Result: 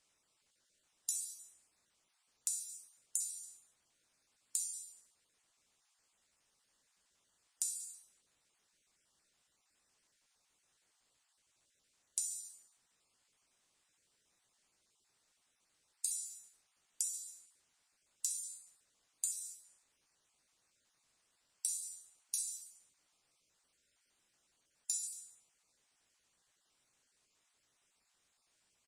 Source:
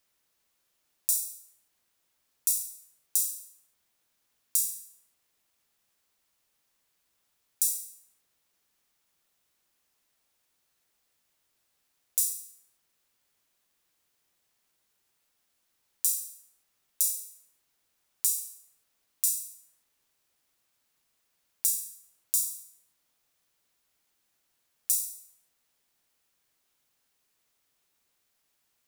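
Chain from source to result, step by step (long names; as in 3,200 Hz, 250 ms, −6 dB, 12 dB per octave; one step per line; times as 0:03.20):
time-frequency cells dropped at random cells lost 21%
Chebyshev low-pass filter 8,500 Hz, order 3
high-shelf EQ 5,900 Hz +5 dB
downward compressor 6 to 1, threshold −35 dBFS, peak gain reduction 12 dB
on a send: ambience of single reflections 16 ms −11.5 dB, 61 ms −14.5 dB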